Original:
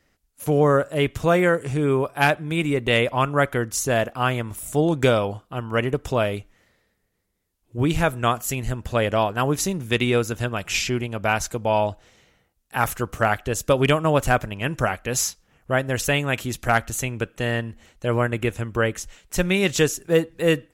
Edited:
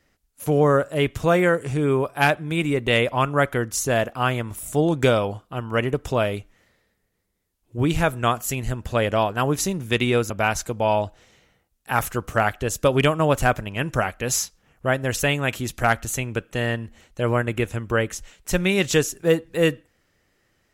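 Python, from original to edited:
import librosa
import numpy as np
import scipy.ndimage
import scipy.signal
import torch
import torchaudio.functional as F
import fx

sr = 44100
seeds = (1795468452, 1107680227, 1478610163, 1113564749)

y = fx.edit(x, sr, fx.cut(start_s=10.3, length_s=0.85), tone=tone)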